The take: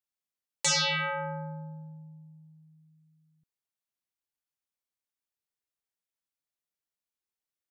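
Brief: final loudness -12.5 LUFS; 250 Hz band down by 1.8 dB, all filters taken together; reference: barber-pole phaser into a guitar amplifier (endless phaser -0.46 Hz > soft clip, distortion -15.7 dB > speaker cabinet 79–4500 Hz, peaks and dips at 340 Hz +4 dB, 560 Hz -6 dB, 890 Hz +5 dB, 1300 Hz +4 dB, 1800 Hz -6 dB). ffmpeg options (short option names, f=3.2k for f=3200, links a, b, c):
-filter_complex "[0:a]equalizer=f=250:t=o:g=-4.5,asplit=2[a][b];[b]afreqshift=-0.46[c];[a][c]amix=inputs=2:normalize=1,asoftclip=threshold=-24.5dB,highpass=79,equalizer=f=340:t=q:w=4:g=4,equalizer=f=560:t=q:w=4:g=-6,equalizer=f=890:t=q:w=4:g=5,equalizer=f=1.3k:t=q:w=4:g=4,equalizer=f=1.8k:t=q:w=4:g=-6,lowpass=f=4.5k:w=0.5412,lowpass=f=4.5k:w=1.3066,volume=22.5dB"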